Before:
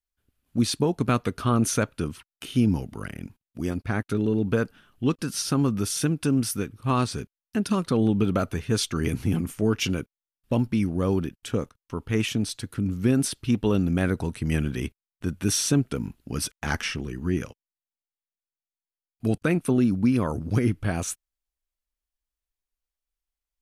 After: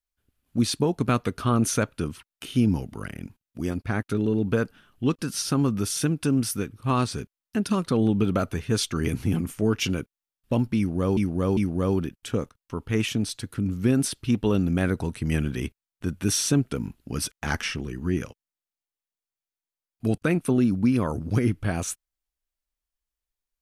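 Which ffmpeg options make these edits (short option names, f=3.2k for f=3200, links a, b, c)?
-filter_complex "[0:a]asplit=3[a][b][c];[a]atrim=end=11.172[d];[b]atrim=start=10.768:end=11.172[e];[c]atrim=start=10.768[f];[d][e]acrossfade=d=0.004:c1=hsin:c2=hsin[g];[g][f]acrossfade=d=0.004:c1=hsin:c2=hsin"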